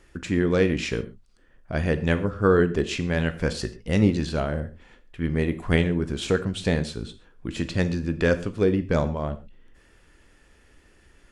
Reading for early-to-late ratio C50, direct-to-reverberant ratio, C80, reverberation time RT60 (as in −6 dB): 15.0 dB, 11.0 dB, 18.5 dB, non-exponential decay